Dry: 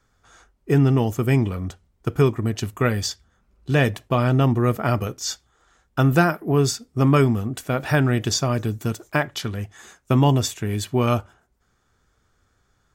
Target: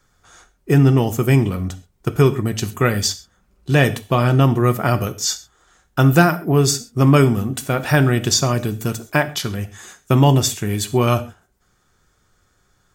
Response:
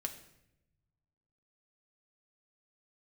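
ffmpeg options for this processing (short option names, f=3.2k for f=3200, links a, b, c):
-filter_complex "[0:a]asplit=2[a][b];[b]highshelf=f=4.3k:g=10[c];[1:a]atrim=start_sample=2205,atrim=end_sample=6174[d];[c][d]afir=irnorm=-1:irlink=0,volume=0.5dB[e];[a][e]amix=inputs=2:normalize=0,volume=-2dB"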